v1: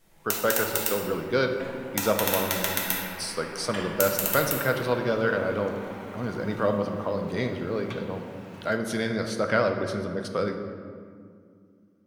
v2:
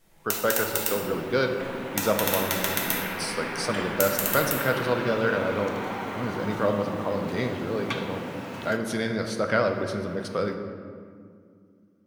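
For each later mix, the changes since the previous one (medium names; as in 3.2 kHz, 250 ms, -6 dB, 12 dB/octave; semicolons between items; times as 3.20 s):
second sound +9.5 dB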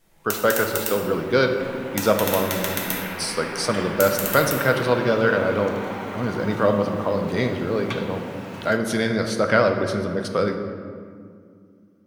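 speech +5.5 dB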